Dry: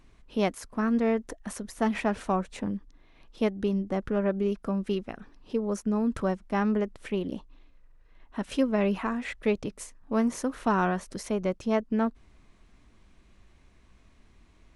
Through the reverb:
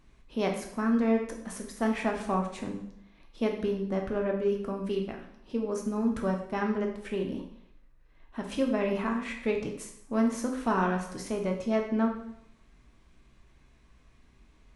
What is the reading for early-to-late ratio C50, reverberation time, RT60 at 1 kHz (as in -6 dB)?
6.5 dB, 0.75 s, 0.75 s